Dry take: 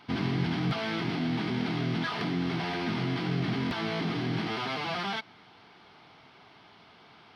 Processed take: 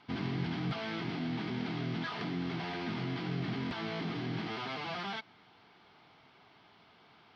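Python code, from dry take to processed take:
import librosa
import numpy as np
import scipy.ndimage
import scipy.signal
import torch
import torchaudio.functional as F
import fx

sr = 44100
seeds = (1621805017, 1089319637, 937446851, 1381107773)

y = scipy.signal.sosfilt(scipy.signal.butter(2, 6400.0, 'lowpass', fs=sr, output='sos'), x)
y = F.gain(torch.from_numpy(y), -6.0).numpy()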